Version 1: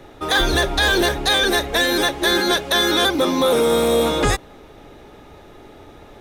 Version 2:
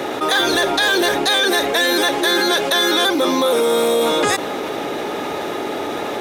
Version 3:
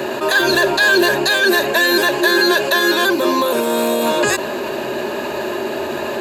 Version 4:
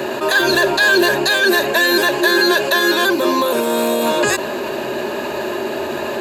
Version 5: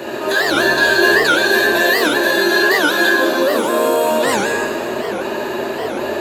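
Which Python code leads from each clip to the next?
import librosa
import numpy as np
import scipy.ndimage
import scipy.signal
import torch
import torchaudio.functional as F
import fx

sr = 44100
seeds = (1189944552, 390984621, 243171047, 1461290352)

y1 = scipy.signal.sosfilt(scipy.signal.butter(2, 270.0, 'highpass', fs=sr, output='sos'), x)
y1 = fx.env_flatten(y1, sr, amount_pct=70)
y2 = fx.ripple_eq(y1, sr, per_octave=1.4, db=12)
y3 = y2
y4 = fx.rev_plate(y3, sr, seeds[0], rt60_s=2.9, hf_ratio=0.6, predelay_ms=0, drr_db=-5.5)
y4 = fx.record_warp(y4, sr, rpm=78.0, depth_cents=250.0)
y4 = F.gain(torch.from_numpy(y4), -6.0).numpy()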